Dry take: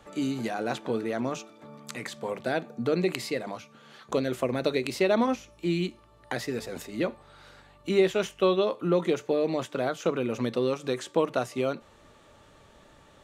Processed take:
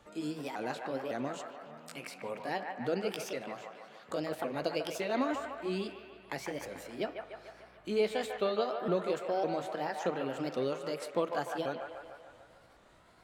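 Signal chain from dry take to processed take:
pitch shifter swept by a sawtooth +4.5 semitones, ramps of 555 ms
delay with a band-pass on its return 148 ms, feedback 60%, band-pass 1,200 Hz, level −3.5 dB
spring reverb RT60 3 s, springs 47/58 ms, chirp 60 ms, DRR 18.5 dB
level −6.5 dB

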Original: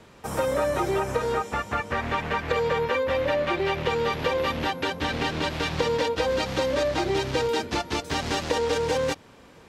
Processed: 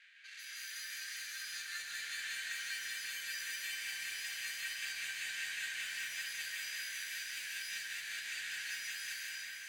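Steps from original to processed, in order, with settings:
sample-rate reduction 5,400 Hz, jitter 0%
low-pass that shuts in the quiet parts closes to 2,700 Hz, open at −20.5 dBFS
reversed playback
downward compressor 5 to 1, threshold −34 dBFS, peak gain reduction 13.5 dB
reversed playback
brickwall limiter −32 dBFS, peak gain reduction 8.5 dB
Chebyshev high-pass filter 1,600 Hz, order 6
soft clipping −39 dBFS, distortion −19 dB
on a send: echo with a time of its own for lows and highs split 2,000 Hz, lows 342 ms, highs 552 ms, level −8 dB
on the sum: dense smooth reverb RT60 4.4 s, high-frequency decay 0.4×, pre-delay 120 ms, DRR −7 dB
level +1 dB

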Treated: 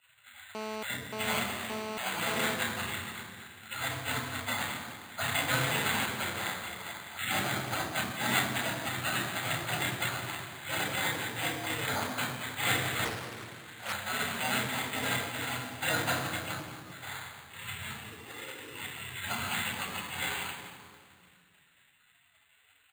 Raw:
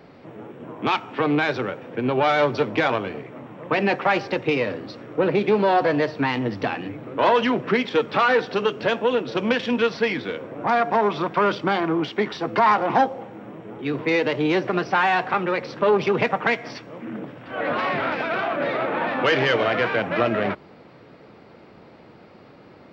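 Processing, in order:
0:18.02–0:18.72: high-pass filter 670 Hz 24 dB per octave
gate on every frequency bin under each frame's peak −25 dB weak
0:07.39–0:08.07: high-shelf EQ 3,700 Hz −11.5 dB
echo with shifted repeats 211 ms, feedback 54%, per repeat +68 Hz, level −18 dB
convolution reverb RT60 1.9 s, pre-delay 3 ms, DRR 0 dB
bad sample-rate conversion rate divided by 8×, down filtered, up hold
0:00.55–0:02.55: phone interference −35 dBFS
0:13.05–0:13.93: highs frequency-modulated by the lows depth 0.73 ms
level −2.5 dB

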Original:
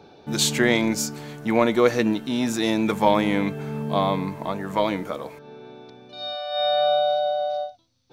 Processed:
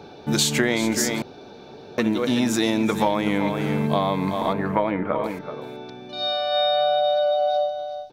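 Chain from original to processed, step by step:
0:04.53–0:05.24: low-pass filter 2,400 Hz 24 dB per octave
single-tap delay 378 ms −11.5 dB
downward compressor 6 to 1, threshold −24 dBFS, peak gain reduction 11.5 dB
0:01.22–0:01.98: fill with room tone
level +6.5 dB

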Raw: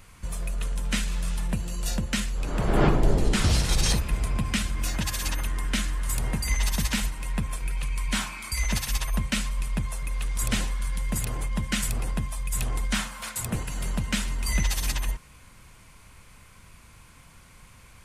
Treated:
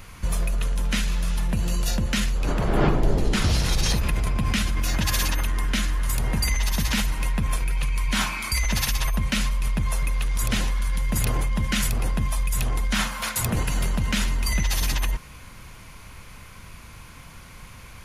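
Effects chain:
parametric band 8,200 Hz −10.5 dB 0.23 octaves
in parallel at −0.5 dB: compressor whose output falls as the input rises −29 dBFS, ratio −0.5

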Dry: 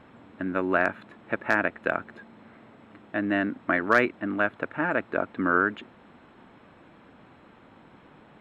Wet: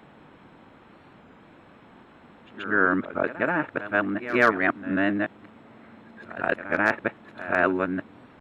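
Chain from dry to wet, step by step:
played backwards from end to start
echo ahead of the sound 132 ms −14 dB
wow of a warped record 33 1/3 rpm, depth 100 cents
level +1.5 dB

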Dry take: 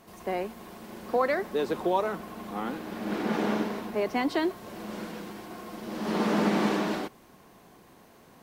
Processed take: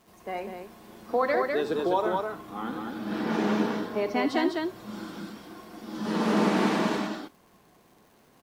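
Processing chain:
loudspeakers that aren't time-aligned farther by 26 metres −11 dB, 69 metres −3 dB
surface crackle 290 per second −46 dBFS
noise reduction from a noise print of the clip's start 7 dB

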